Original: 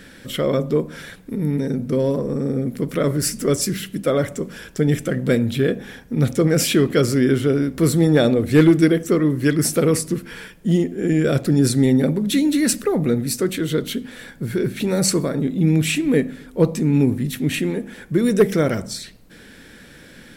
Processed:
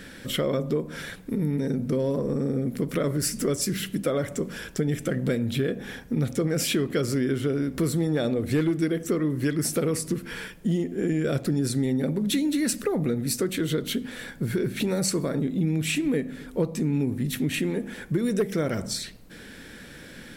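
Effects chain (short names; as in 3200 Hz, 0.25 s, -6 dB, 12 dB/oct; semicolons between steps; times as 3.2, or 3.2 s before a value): compressor 4:1, threshold -23 dBFS, peak gain reduction 12.5 dB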